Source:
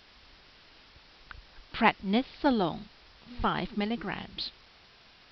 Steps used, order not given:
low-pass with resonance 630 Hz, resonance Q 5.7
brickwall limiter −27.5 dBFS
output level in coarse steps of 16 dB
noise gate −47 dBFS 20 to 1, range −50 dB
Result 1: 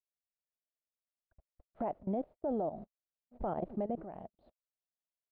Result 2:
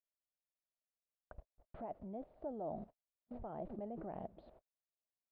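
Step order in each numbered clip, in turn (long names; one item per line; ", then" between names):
output level in coarse steps, then noise gate, then low-pass with resonance, then brickwall limiter
noise gate, then brickwall limiter, then output level in coarse steps, then low-pass with resonance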